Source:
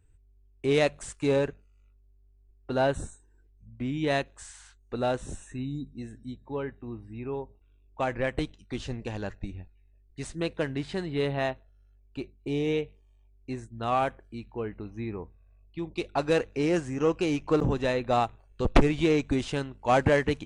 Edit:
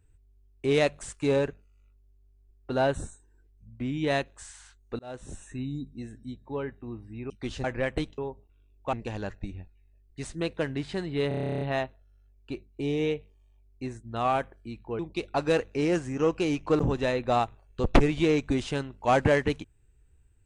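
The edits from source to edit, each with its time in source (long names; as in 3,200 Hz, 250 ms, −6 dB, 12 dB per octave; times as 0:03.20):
0:04.99–0:05.45: fade in
0:07.30–0:08.05: swap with 0:08.59–0:08.93
0:11.28: stutter 0.03 s, 12 plays
0:14.66–0:15.80: remove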